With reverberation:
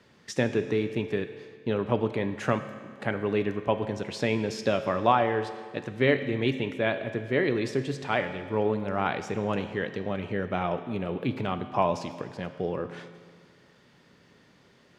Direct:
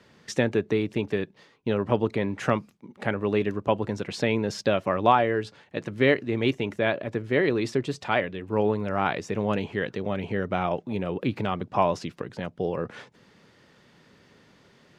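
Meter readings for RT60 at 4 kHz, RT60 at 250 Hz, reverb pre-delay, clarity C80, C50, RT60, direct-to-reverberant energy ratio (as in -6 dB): 1.7 s, 1.8 s, 6 ms, 11.5 dB, 10.5 dB, 1.8 s, 8.5 dB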